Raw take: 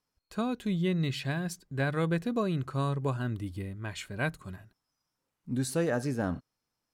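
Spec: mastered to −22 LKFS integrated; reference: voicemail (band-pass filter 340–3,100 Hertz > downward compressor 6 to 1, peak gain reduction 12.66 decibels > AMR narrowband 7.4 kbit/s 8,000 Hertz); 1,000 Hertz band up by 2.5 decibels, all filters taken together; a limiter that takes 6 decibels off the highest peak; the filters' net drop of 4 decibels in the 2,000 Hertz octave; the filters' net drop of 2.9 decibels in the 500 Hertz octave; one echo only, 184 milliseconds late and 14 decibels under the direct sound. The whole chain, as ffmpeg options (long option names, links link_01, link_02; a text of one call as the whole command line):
ffmpeg -i in.wav -af "equalizer=frequency=500:width_type=o:gain=-3.5,equalizer=frequency=1000:width_type=o:gain=6.5,equalizer=frequency=2000:width_type=o:gain=-8,alimiter=limit=-24dB:level=0:latency=1,highpass=340,lowpass=3100,aecho=1:1:184:0.2,acompressor=threshold=-44dB:ratio=6,volume=28dB" -ar 8000 -c:a libopencore_amrnb -b:a 7400 out.amr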